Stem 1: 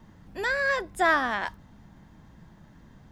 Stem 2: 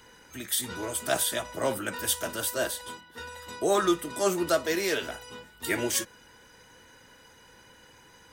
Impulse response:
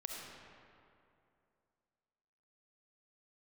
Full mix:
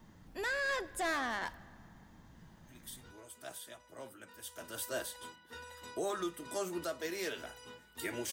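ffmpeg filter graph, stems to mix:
-filter_complex "[0:a]highshelf=frequency=4700:gain=8,asoftclip=type=tanh:threshold=-25dB,volume=-6.5dB,asplit=2[link_01][link_02];[link_02]volume=-15dB[link_03];[1:a]adelay=2350,volume=-8dB,afade=type=in:start_time=4.45:duration=0.52:silence=0.237137[link_04];[2:a]atrim=start_sample=2205[link_05];[link_03][link_05]afir=irnorm=-1:irlink=0[link_06];[link_01][link_04][link_06]amix=inputs=3:normalize=0,bandreject=frequency=50:width_type=h:width=6,bandreject=frequency=100:width_type=h:width=6,bandreject=frequency=150:width_type=h:width=6,bandreject=frequency=200:width_type=h:width=6,alimiter=level_in=3.5dB:limit=-24dB:level=0:latency=1:release=291,volume=-3.5dB"

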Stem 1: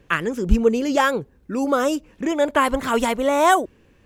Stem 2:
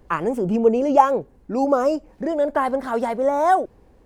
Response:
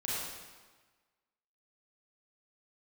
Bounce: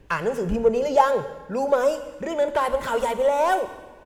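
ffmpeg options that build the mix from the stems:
-filter_complex "[0:a]asoftclip=type=tanh:threshold=-14dB,acompressor=threshold=-23dB:ratio=6,volume=-3.5dB,asplit=2[link_01][link_02];[link_02]volume=-11dB[link_03];[1:a]adelay=2,volume=-4dB,asplit=2[link_04][link_05];[link_05]volume=-19.5dB[link_06];[2:a]atrim=start_sample=2205[link_07];[link_03][link_06]amix=inputs=2:normalize=0[link_08];[link_08][link_07]afir=irnorm=-1:irlink=0[link_09];[link_01][link_04][link_09]amix=inputs=3:normalize=0"

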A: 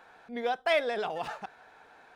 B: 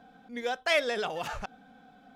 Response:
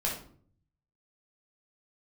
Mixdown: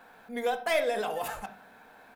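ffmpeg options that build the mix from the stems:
-filter_complex "[0:a]asoftclip=type=tanh:threshold=-19.5dB,volume=-2.5dB,asplit=2[link_01][link_02];[link_02]volume=-9dB[link_03];[1:a]acompressor=threshold=-32dB:ratio=6,aexciter=amount=10.5:drive=6.9:freq=7700,adelay=3.5,volume=-7.5dB[link_04];[2:a]atrim=start_sample=2205[link_05];[link_03][link_05]afir=irnorm=-1:irlink=0[link_06];[link_01][link_04][link_06]amix=inputs=3:normalize=0"

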